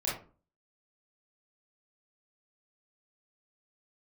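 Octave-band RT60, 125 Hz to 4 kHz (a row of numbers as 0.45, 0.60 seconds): 0.50, 0.50, 0.40, 0.35, 0.30, 0.20 seconds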